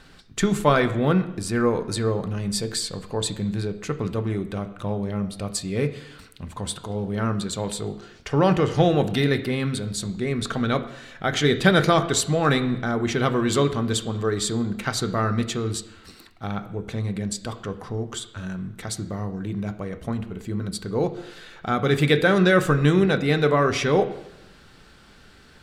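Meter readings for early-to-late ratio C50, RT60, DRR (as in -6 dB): 13.0 dB, 0.90 s, 7.0 dB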